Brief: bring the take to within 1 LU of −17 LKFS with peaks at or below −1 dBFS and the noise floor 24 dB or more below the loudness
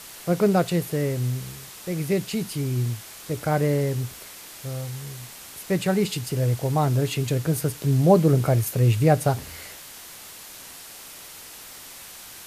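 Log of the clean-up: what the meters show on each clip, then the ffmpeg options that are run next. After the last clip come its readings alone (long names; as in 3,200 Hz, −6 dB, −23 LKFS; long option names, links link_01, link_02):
background noise floor −43 dBFS; target noise floor −48 dBFS; integrated loudness −23.5 LKFS; sample peak −5.0 dBFS; target loudness −17.0 LKFS
→ -af "afftdn=noise_reduction=6:noise_floor=-43"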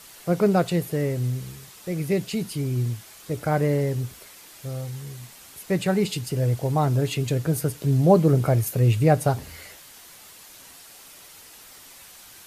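background noise floor −47 dBFS; target noise floor −48 dBFS
→ -af "afftdn=noise_reduction=6:noise_floor=-47"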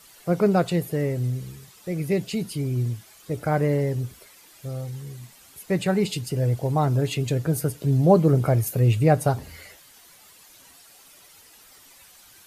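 background noise floor −52 dBFS; integrated loudness −23.5 LKFS; sample peak −5.0 dBFS; target loudness −17.0 LKFS
→ -af "volume=6.5dB,alimiter=limit=-1dB:level=0:latency=1"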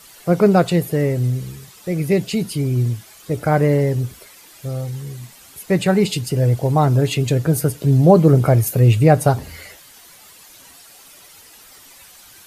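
integrated loudness −17.5 LKFS; sample peak −1.0 dBFS; background noise floor −45 dBFS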